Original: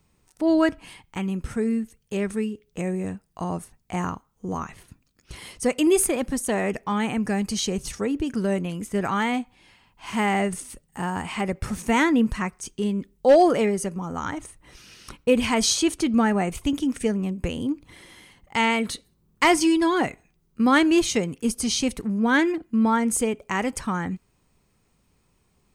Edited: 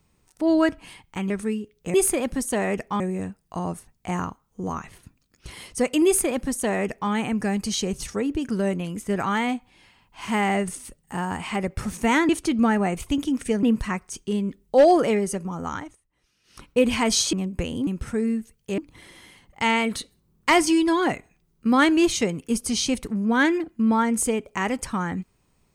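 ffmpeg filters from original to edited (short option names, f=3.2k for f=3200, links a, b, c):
-filter_complex "[0:a]asplit=11[a][b][c][d][e][f][g][h][i][j][k];[a]atrim=end=1.302[l];[b]atrim=start=2.208:end=2.852[m];[c]atrim=start=5.898:end=6.962[n];[d]atrim=start=2.848:end=12.142[o];[e]atrim=start=15.838:end=17.182[p];[f]atrim=start=12.138:end=14.48,asetpts=PTS-STARTPTS,afade=t=out:st=2.072:d=0.27:silence=0.0841395[q];[g]atrim=start=14.48:end=14.94,asetpts=PTS-STARTPTS,volume=-21.5dB[r];[h]atrim=start=14.94:end=15.842,asetpts=PTS-STARTPTS,afade=t=in:d=0.27:silence=0.0841395[s];[i]atrim=start=17.178:end=17.722[t];[j]atrim=start=1.298:end=2.212[u];[k]atrim=start=17.718[v];[l][m]acrossfade=d=0.004:c1=hsin:c2=hsin[w];[w][n]acrossfade=d=0.004:c1=hsin:c2=hsin[x];[x][o]acrossfade=d=0.004:c1=hsin:c2=hsin[y];[y][p]acrossfade=d=0.004:c1=hsin:c2=hsin[z];[q][r][s]concat=n=3:v=0:a=1[aa];[z][aa]acrossfade=d=0.004:c1=hsin:c2=hsin[ab];[ab][t]acrossfade=d=0.004:c1=hsin:c2=hsin[ac];[ac][u]acrossfade=d=0.004:c1=hsin:c2=hsin[ad];[ad][v]acrossfade=d=0.004:c1=hsin:c2=hsin"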